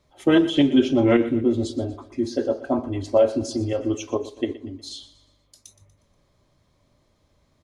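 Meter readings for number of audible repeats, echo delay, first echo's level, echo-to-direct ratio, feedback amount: 3, 120 ms, -16.0 dB, -15.0 dB, 46%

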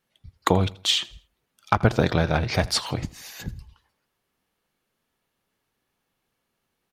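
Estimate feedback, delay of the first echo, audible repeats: 34%, 82 ms, 2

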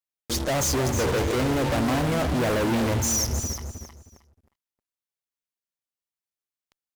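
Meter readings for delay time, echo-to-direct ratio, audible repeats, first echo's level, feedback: 313 ms, -8.0 dB, 3, -8.0 dB, 22%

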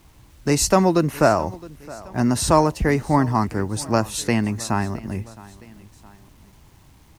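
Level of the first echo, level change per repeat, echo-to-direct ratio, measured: -20.5 dB, -5.5 dB, -19.5 dB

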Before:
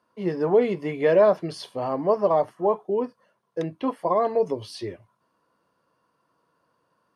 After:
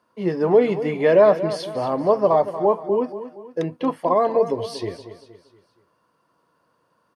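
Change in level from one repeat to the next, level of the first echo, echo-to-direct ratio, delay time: -7.5 dB, -12.5 dB, -11.5 dB, 235 ms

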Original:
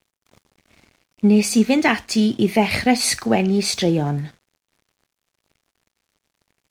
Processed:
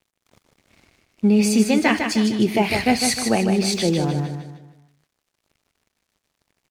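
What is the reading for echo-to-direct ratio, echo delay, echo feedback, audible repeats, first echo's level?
-5.0 dB, 153 ms, 41%, 4, -6.0 dB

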